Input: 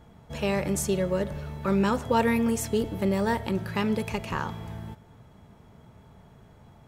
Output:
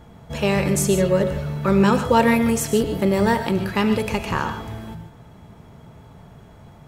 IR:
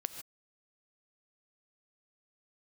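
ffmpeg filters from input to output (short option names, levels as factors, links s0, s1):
-filter_complex "[1:a]atrim=start_sample=2205[s0];[0:a][s0]afir=irnorm=-1:irlink=0,volume=2.51"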